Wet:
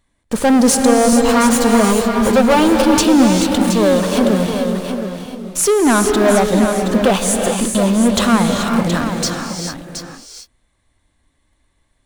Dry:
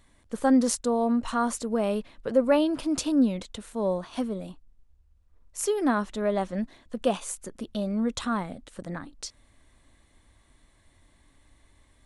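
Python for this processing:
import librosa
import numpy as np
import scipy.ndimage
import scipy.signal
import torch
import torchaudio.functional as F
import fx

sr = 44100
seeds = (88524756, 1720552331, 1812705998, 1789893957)

p1 = fx.lower_of_two(x, sr, delay_ms=9.2, at=(1.12, 2.82))
p2 = fx.leveller(p1, sr, passes=3)
p3 = fx.fuzz(p2, sr, gain_db=37.0, gate_db=-46.0)
p4 = p2 + (p3 * librosa.db_to_amplitude(-11.5))
p5 = p4 + 10.0 ** (-8.5 / 20.0) * np.pad(p4, (int(722 * sr / 1000.0), 0))[:len(p4)]
p6 = fx.rev_gated(p5, sr, seeds[0], gate_ms=460, shape='rising', drr_db=3.0)
y = p6 * librosa.db_to_amplitude(1.0)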